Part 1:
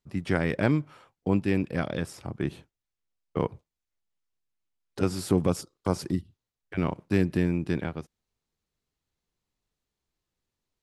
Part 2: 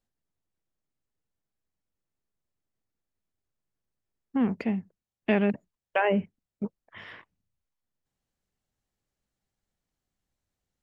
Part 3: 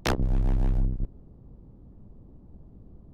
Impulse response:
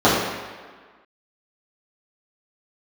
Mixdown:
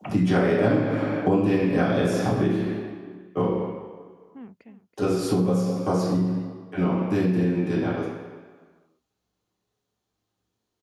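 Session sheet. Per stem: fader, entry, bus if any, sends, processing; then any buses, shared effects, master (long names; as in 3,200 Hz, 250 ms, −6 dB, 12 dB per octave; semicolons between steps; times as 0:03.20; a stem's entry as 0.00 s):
0:02.30 −2 dB → 0:02.72 −13 dB, 0.00 s, send −8 dB, no echo send, high-shelf EQ 3,200 Hz +10 dB; mains-hum notches 50/100/150/200/250/300 Hz
−17.0 dB, 0.00 s, no send, echo send −14.5 dB, automatic ducking −8 dB, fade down 0.50 s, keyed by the first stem
−16.0 dB, 0.00 s, send −20.5 dB, no echo send, three sine waves on the formant tracks; volume swells 678 ms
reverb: on, RT60 1.6 s, pre-delay 3 ms
echo: single-tap delay 328 ms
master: downward compressor 5 to 1, threshold −19 dBFS, peak gain reduction 16 dB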